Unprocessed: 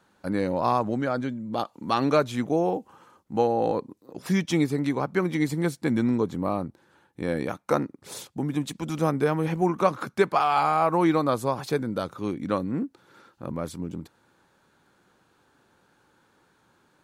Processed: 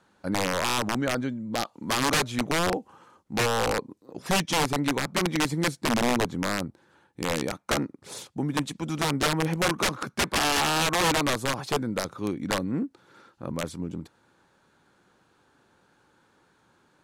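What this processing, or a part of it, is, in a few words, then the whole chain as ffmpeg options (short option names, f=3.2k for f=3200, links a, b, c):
overflowing digital effects unit: -af "aeval=exprs='(mod(7.5*val(0)+1,2)-1)/7.5':c=same,lowpass=11k"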